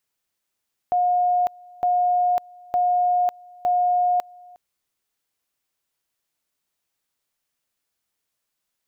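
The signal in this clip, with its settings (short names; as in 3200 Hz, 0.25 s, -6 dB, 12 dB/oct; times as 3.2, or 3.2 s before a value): two-level tone 717 Hz -16.5 dBFS, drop 26 dB, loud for 0.55 s, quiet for 0.36 s, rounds 4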